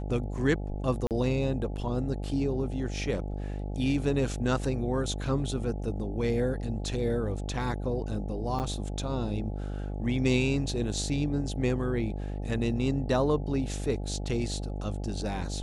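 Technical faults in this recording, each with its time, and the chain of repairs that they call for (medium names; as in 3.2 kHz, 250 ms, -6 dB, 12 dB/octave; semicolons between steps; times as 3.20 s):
buzz 50 Hz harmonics 17 -34 dBFS
1.07–1.11 s: dropout 38 ms
8.59–8.60 s: dropout 8.9 ms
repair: de-hum 50 Hz, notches 17; interpolate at 1.07 s, 38 ms; interpolate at 8.59 s, 8.9 ms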